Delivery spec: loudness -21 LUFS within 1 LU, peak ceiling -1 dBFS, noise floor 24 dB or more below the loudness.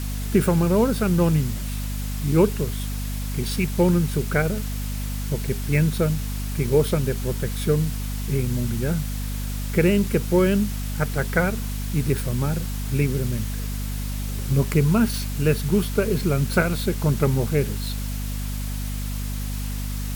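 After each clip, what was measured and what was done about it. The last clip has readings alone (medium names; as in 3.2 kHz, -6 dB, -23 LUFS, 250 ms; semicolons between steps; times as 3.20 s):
hum 50 Hz; highest harmonic 250 Hz; hum level -26 dBFS; noise floor -28 dBFS; noise floor target -48 dBFS; loudness -23.5 LUFS; peak level -6.0 dBFS; loudness target -21.0 LUFS
-> de-hum 50 Hz, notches 5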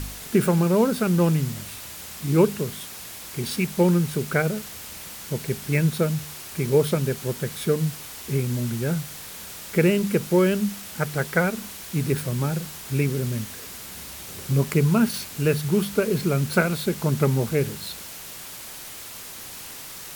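hum not found; noise floor -39 dBFS; noise floor target -48 dBFS
-> noise reduction 9 dB, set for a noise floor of -39 dBFS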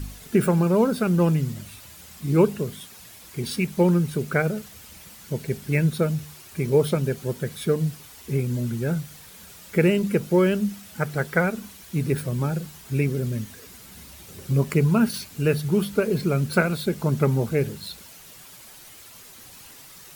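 noise floor -46 dBFS; noise floor target -48 dBFS
-> noise reduction 6 dB, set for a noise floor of -46 dBFS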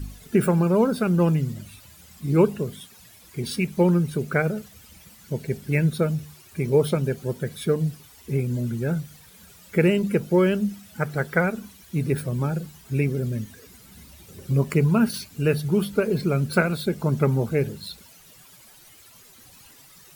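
noise floor -51 dBFS; loudness -24.0 LUFS; peak level -6.0 dBFS; loudness target -21.0 LUFS
-> trim +3 dB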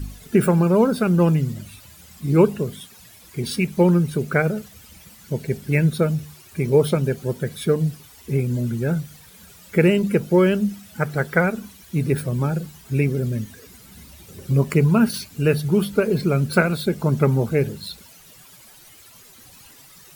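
loudness -21.0 LUFS; peak level -3.0 dBFS; noise floor -48 dBFS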